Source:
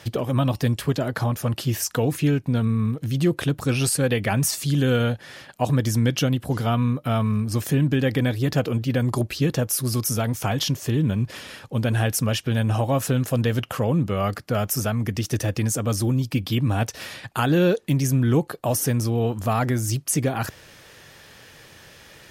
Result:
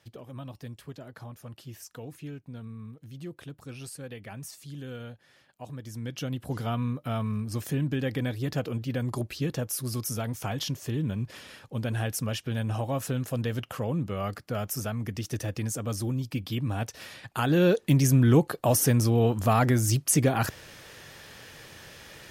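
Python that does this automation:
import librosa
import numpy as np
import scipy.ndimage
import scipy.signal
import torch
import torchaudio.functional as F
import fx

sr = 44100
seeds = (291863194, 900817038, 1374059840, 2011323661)

y = fx.gain(x, sr, db=fx.line((5.83, -19.5), (6.46, -8.0), (17.14, -8.0), (17.9, 0.0)))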